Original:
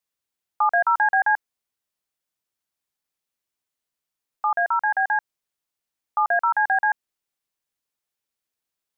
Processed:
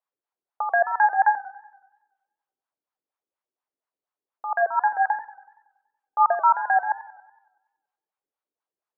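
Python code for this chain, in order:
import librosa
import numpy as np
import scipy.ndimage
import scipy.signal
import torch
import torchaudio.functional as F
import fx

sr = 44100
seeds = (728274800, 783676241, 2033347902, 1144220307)

y = fx.wah_lfo(x, sr, hz=4.2, low_hz=340.0, high_hz=1100.0, q=2.4)
y = fx.echo_warbled(y, sr, ms=94, feedback_pct=55, rate_hz=2.8, cents=106, wet_db=-17.0)
y = y * librosa.db_to_amplitude(6.5)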